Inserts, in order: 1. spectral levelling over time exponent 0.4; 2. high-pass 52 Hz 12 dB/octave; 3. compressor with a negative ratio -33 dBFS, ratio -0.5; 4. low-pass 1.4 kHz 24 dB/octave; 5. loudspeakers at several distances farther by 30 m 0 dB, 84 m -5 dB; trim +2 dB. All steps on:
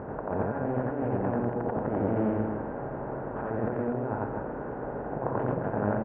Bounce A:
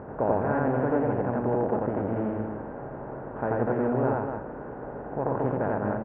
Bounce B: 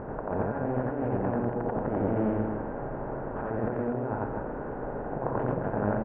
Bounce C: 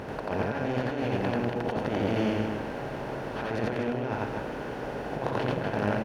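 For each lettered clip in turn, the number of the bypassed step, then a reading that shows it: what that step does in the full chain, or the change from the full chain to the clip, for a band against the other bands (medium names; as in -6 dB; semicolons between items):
3, momentary loudness spread change +5 LU; 2, crest factor change -1.5 dB; 4, 2 kHz band +6.5 dB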